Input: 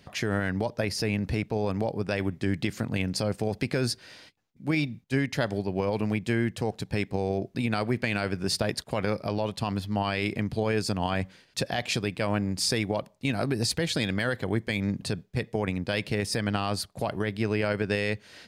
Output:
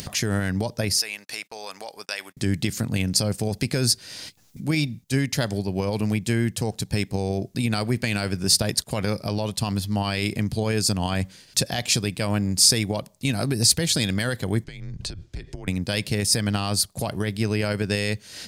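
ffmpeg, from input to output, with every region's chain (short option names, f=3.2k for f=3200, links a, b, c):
-filter_complex "[0:a]asettb=1/sr,asplit=3[a][b][c];[a]atrim=end=0.994[d];[b]atrim=start=0.99:end=2.37,asetpts=PTS-STARTPTS,afade=t=in:d=0.004:c=qsin,afade=t=out:st=1.376:d=0.004:c=qsin,highpass=1k,agate=range=-34dB:threshold=-52dB:ratio=16:release=100:detection=peak[e];[c]atrim=start=2.366[f];[d][e]acrossfade=d=0.004:c1=hsin:c2=qsin[g];[g][f]acrossfade=d=0.004:c1=qsin:c2=hsin,asettb=1/sr,asplit=3[h][i][j];[h]atrim=end=14.644[k];[i]atrim=start=14.64:end=15.68,asetpts=PTS-STARTPTS,afade=t=in:d=0.004:c=qsin,afade=t=out:st=1.036:d=0.004:c=qsin,lowpass=5.4k,acompressor=threshold=-38dB:ratio=10:attack=3.2:release=140:knee=1:detection=peak,afreqshift=-76[l];[j]atrim=start=15.676[m];[k][l]acrossfade=d=0.004:c1=hsin:c2=qsin[n];[n][m]acrossfade=d=0.004:c1=qsin:c2=hsin,acompressor=mode=upward:threshold=-32dB:ratio=2.5,bass=f=250:g=6,treble=f=4k:g=15"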